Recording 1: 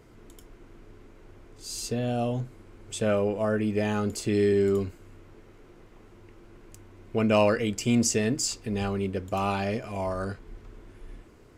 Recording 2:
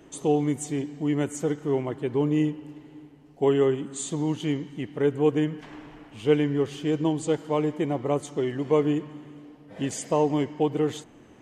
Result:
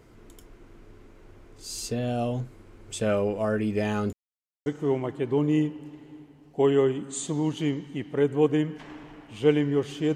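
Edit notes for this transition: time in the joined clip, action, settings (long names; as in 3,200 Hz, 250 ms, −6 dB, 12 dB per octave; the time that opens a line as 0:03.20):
recording 1
0:04.13–0:04.66: silence
0:04.66: continue with recording 2 from 0:01.49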